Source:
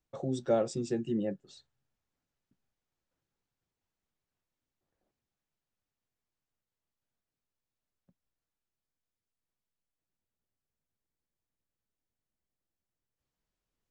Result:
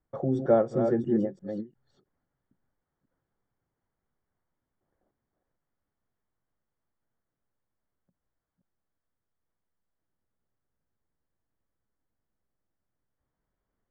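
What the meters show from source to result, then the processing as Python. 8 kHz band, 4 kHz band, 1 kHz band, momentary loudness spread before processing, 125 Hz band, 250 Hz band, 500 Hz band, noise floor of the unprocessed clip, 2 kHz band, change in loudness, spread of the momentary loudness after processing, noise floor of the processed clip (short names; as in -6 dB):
under -15 dB, under -10 dB, +6.5 dB, 8 LU, +6.0 dB, +6.5 dB, +6.5 dB, under -85 dBFS, +4.0 dB, +6.5 dB, 14 LU, under -85 dBFS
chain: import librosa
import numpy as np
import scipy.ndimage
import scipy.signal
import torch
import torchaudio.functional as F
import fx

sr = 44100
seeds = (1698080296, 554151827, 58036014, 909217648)

y = fx.reverse_delay(x, sr, ms=348, wet_db=-7)
y = scipy.signal.savgol_filter(y, 41, 4, mode='constant')
y = fx.end_taper(y, sr, db_per_s=280.0)
y = y * 10.0 ** (6.0 / 20.0)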